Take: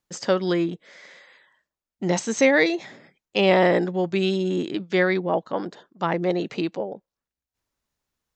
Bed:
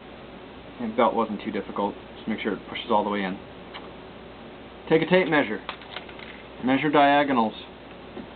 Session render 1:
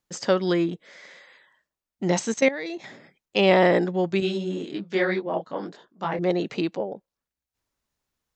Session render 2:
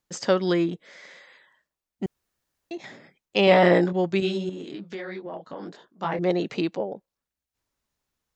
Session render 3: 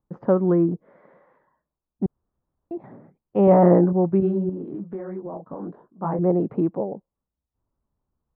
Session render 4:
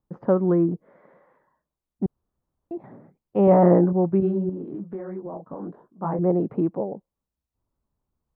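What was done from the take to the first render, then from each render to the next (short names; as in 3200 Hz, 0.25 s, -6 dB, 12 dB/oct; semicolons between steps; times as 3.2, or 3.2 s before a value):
2.32–2.84 level quantiser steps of 16 dB; 4.2–6.19 detuned doubles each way 42 cents
2.06–2.71 room tone; 3.45–3.93 doubler 23 ms -5.5 dB; 4.49–5.67 compressor, threshold -32 dBFS
Chebyshev low-pass 1100 Hz, order 3; low shelf 310 Hz +9.5 dB
gain -1 dB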